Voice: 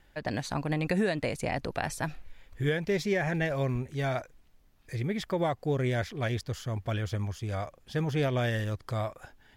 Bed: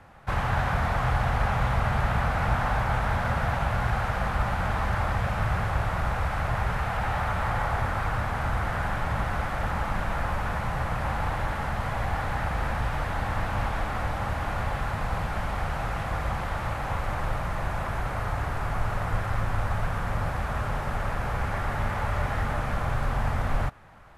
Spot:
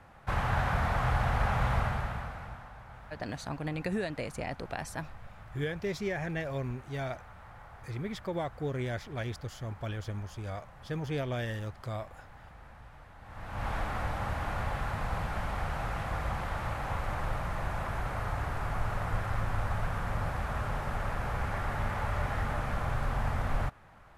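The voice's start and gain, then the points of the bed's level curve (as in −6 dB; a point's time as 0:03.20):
2.95 s, −5.5 dB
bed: 0:01.78 −3.5 dB
0:02.72 −23.5 dB
0:13.19 −23.5 dB
0:13.70 −4.5 dB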